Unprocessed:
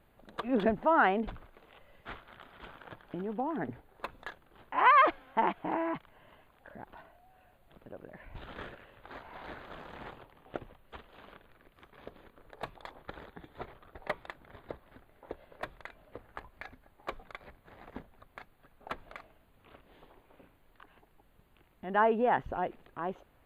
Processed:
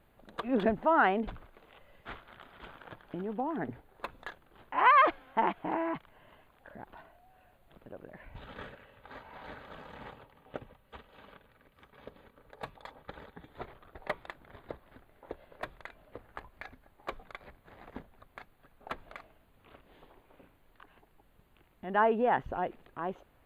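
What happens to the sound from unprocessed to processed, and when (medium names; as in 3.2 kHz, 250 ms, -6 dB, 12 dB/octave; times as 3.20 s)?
8.30–13.48 s: comb of notches 350 Hz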